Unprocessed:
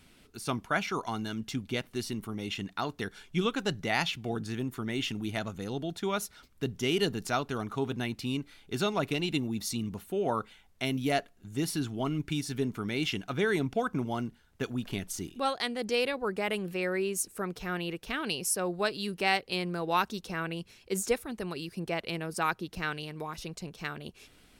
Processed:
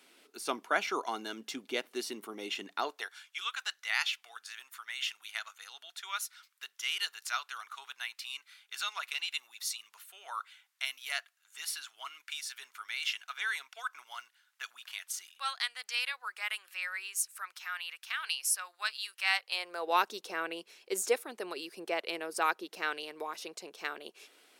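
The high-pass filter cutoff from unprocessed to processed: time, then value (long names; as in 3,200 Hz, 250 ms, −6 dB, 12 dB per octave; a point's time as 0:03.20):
high-pass filter 24 dB per octave
0:02.80 320 Hz
0:03.23 1,200 Hz
0:19.22 1,200 Hz
0:19.98 360 Hz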